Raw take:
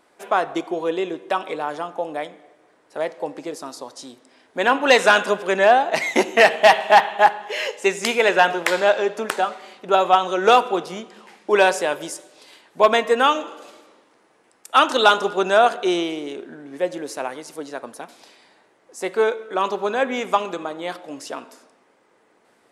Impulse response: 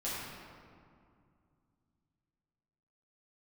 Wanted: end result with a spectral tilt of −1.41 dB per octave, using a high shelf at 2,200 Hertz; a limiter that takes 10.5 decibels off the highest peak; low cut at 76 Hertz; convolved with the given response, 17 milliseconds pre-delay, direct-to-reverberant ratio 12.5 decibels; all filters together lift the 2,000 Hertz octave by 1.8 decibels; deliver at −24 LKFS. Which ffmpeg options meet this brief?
-filter_complex "[0:a]highpass=76,equalizer=frequency=2000:width_type=o:gain=5,highshelf=frequency=2200:gain=-5,alimiter=limit=-12.5dB:level=0:latency=1,asplit=2[link_01][link_02];[1:a]atrim=start_sample=2205,adelay=17[link_03];[link_02][link_03]afir=irnorm=-1:irlink=0,volume=-17dB[link_04];[link_01][link_04]amix=inputs=2:normalize=0,volume=0.5dB"

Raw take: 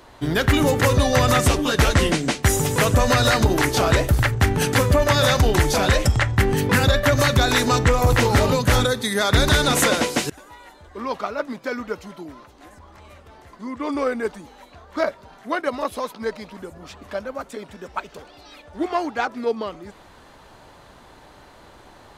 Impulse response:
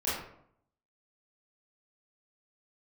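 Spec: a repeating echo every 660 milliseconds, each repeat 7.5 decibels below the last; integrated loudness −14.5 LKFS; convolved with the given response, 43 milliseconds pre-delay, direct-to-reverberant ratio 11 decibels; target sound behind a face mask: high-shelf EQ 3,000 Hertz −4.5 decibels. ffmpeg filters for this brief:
-filter_complex "[0:a]aecho=1:1:660|1320|1980|2640|3300:0.422|0.177|0.0744|0.0312|0.0131,asplit=2[link_01][link_02];[1:a]atrim=start_sample=2205,adelay=43[link_03];[link_02][link_03]afir=irnorm=-1:irlink=0,volume=-19dB[link_04];[link_01][link_04]amix=inputs=2:normalize=0,highshelf=frequency=3000:gain=-4.5,volume=5dB"

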